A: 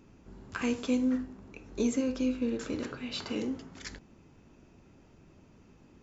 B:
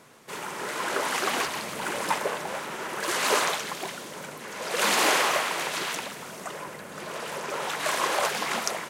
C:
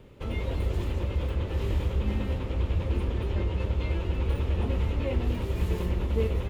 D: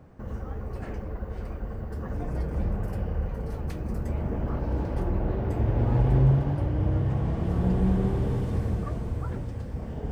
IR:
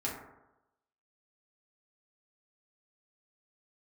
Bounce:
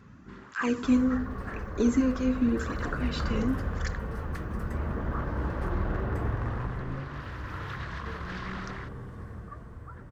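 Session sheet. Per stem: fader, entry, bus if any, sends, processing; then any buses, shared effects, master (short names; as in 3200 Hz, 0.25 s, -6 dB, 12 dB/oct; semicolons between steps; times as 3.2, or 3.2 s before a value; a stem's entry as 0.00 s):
+1.5 dB, 0.00 s, no send, low shelf 250 Hz +10.5 dB; tape flanging out of phase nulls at 0.9 Hz, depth 3.4 ms
-19.5 dB, 0.00 s, no send, LPF 4600 Hz 24 dB/oct; tilt +2.5 dB/oct; negative-ratio compressor -29 dBFS, ratio -1; auto duck -16 dB, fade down 0.75 s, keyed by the first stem
-17.0 dB, 1.90 s, no send, dry
6.2 s -3 dB -> 6.86 s -14 dB, 0.65 s, no send, one-sided fold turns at -21 dBFS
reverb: off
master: band shelf 1400 Hz +10.5 dB 1.1 oct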